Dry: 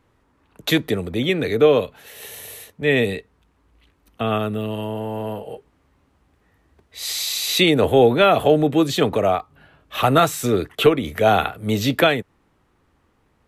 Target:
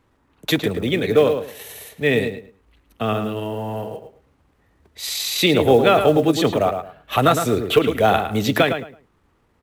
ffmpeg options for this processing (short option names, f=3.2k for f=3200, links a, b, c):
-filter_complex "[0:a]atempo=1.4,asplit=2[a][b];[b]adelay=109,lowpass=f=2.7k:p=1,volume=-7dB,asplit=2[c][d];[d]adelay=109,lowpass=f=2.7k:p=1,volume=0.23,asplit=2[e][f];[f]adelay=109,lowpass=f=2.7k:p=1,volume=0.23[g];[a][c][e][g]amix=inputs=4:normalize=0,acrusher=bits=8:mode=log:mix=0:aa=0.000001"